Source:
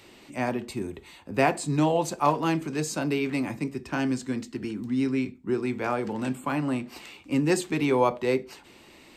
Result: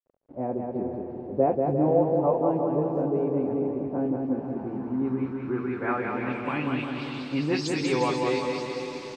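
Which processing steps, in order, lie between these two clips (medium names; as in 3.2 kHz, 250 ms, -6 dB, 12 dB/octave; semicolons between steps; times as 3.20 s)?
delay that grows with frequency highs late, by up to 114 ms; echo that smears into a reverb 453 ms, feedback 55%, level -10 dB; small samples zeroed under -43 dBFS; bouncing-ball echo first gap 190 ms, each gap 0.85×, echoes 5; low-pass sweep 570 Hz -> 5.2 kHz, 4.29–7.63 s; trim -3.5 dB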